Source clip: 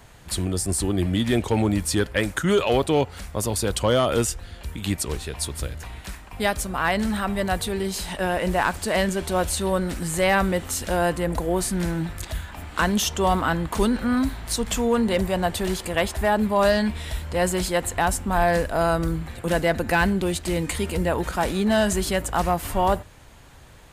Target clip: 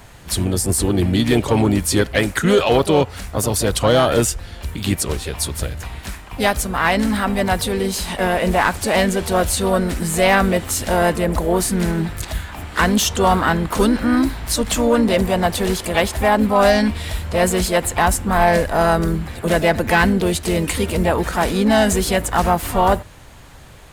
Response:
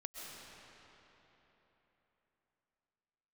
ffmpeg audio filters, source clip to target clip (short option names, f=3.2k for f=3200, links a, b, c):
-filter_complex "[0:a]asplit=3[a][b][c];[b]asetrate=52444,aresample=44100,atempo=0.840896,volume=-17dB[d];[c]asetrate=55563,aresample=44100,atempo=0.793701,volume=-9dB[e];[a][d][e]amix=inputs=3:normalize=0,acontrast=36"